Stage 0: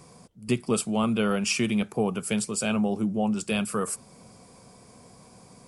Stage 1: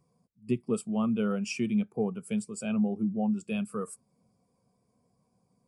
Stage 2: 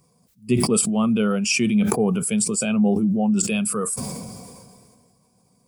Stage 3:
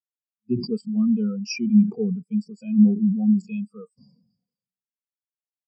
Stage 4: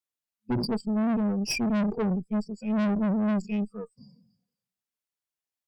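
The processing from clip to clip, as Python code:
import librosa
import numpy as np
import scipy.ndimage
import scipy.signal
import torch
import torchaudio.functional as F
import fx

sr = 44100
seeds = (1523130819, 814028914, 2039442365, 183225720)

y1 = fx.spectral_expand(x, sr, expansion=1.5)
y1 = y1 * 10.0 ** (-4.5 / 20.0)
y2 = fx.high_shelf(y1, sr, hz=3100.0, db=10.5)
y2 = fx.sustainer(y2, sr, db_per_s=29.0)
y2 = y2 * 10.0 ** (7.5 / 20.0)
y3 = fx.lowpass_res(y2, sr, hz=4900.0, q=3.0)
y3 = fx.spectral_expand(y3, sr, expansion=2.5)
y3 = y3 * 10.0 ** (-6.0 / 20.0)
y4 = fx.tube_stage(y3, sr, drive_db=29.0, bias=0.55)
y4 = y4 * 10.0 ** (5.5 / 20.0)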